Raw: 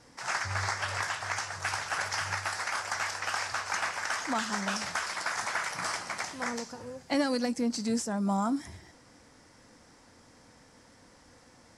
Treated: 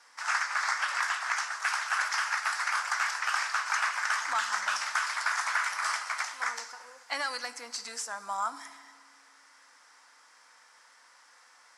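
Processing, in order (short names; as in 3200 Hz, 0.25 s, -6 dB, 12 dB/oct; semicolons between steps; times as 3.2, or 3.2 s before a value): resonant high-pass 1200 Hz, resonance Q 1.7; FDN reverb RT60 1.8 s, low-frequency decay 1.3×, high-frequency decay 0.8×, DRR 13 dB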